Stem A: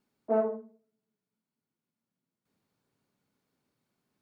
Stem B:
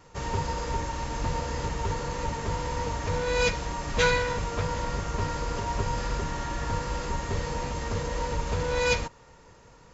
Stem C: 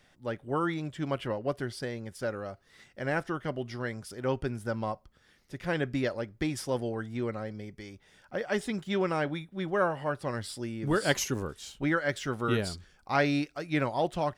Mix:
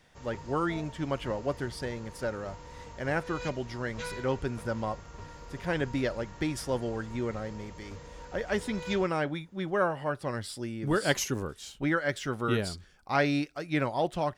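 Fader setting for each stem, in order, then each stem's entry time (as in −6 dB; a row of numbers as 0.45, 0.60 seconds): −19.0, −16.0, 0.0 decibels; 0.40, 0.00, 0.00 seconds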